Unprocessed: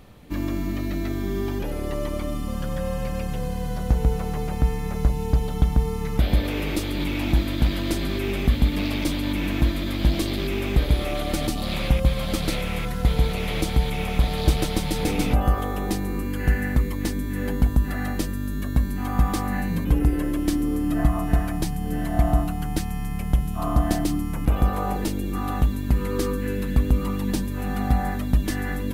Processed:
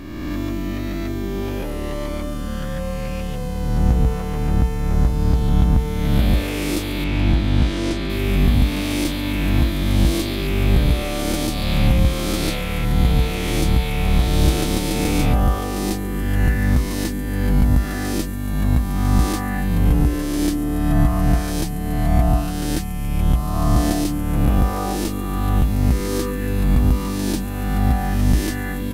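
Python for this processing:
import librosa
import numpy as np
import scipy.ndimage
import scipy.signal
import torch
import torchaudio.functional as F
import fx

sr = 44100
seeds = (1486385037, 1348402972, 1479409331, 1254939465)

y = fx.spec_swells(x, sr, rise_s=1.72)
y = fx.air_absorb(y, sr, metres=65.0, at=(7.04, 8.1))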